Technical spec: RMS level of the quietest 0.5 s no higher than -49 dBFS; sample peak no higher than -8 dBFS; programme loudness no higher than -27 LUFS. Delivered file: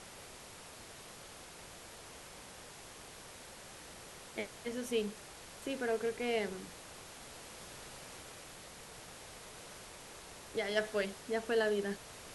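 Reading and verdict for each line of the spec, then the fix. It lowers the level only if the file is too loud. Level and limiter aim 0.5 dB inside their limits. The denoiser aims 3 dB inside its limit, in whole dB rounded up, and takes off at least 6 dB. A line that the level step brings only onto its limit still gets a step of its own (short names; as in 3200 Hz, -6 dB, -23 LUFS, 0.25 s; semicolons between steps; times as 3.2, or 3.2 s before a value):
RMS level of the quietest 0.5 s -52 dBFS: OK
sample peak -17.0 dBFS: OK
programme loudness -41.0 LUFS: OK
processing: none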